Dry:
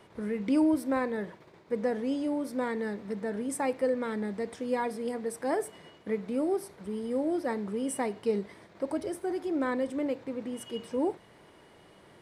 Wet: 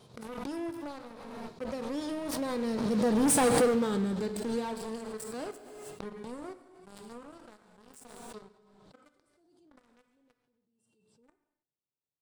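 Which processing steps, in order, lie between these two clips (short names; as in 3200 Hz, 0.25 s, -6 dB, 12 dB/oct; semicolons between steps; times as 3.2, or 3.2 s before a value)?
Doppler pass-by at 3.34, 22 m/s, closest 2.4 m; graphic EQ 125/2000/4000/8000 Hz +9/-12/+9/+6 dB; sample leveller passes 5; vibrato 3.7 Hz 27 cents; echo 0.14 s -21 dB; non-linear reverb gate 0.35 s falling, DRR 9.5 dB; backwards sustainer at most 28 dB/s; gain -2.5 dB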